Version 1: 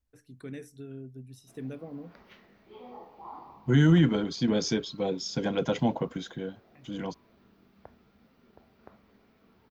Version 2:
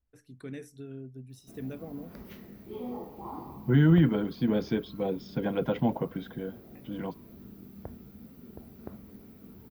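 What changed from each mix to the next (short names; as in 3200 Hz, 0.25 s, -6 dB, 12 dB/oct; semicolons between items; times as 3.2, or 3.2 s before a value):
second voice: add air absorption 350 m; background: remove three-band isolator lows -15 dB, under 590 Hz, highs -23 dB, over 5200 Hz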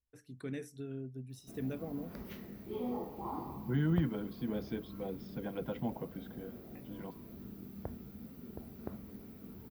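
second voice -10.5 dB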